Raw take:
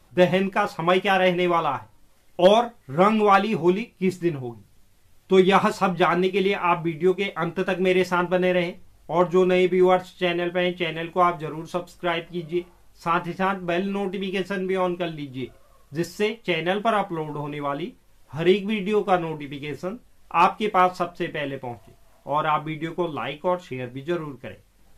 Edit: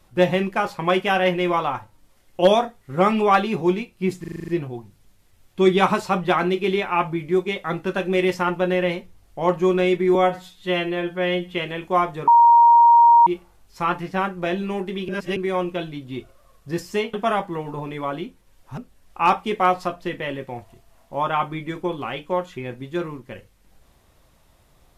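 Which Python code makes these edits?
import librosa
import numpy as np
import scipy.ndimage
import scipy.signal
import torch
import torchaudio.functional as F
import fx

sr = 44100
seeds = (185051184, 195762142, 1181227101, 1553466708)

y = fx.edit(x, sr, fx.stutter(start_s=4.2, slice_s=0.04, count=8),
    fx.stretch_span(start_s=9.87, length_s=0.93, factor=1.5),
    fx.bleep(start_s=11.53, length_s=0.99, hz=939.0, db=-8.5),
    fx.reverse_span(start_s=14.34, length_s=0.28),
    fx.cut(start_s=16.39, length_s=0.36),
    fx.cut(start_s=18.39, length_s=1.53), tone=tone)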